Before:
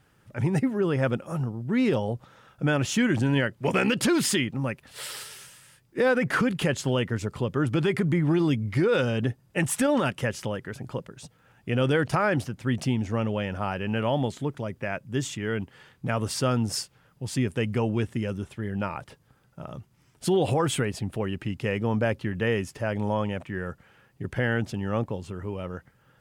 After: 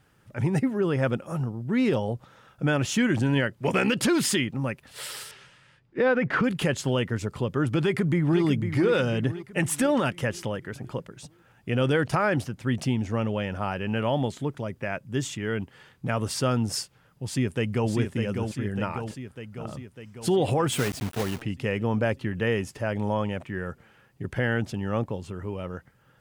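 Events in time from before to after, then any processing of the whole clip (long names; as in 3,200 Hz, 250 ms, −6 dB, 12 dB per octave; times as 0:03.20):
0:05.31–0:06.44: low-pass filter 3,200 Hz
0:07.82–0:08.42: delay throw 500 ms, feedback 50%, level −8.5 dB
0:17.24–0:17.91: delay throw 600 ms, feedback 65%, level −5.5 dB
0:20.72–0:21.42: one scale factor per block 3 bits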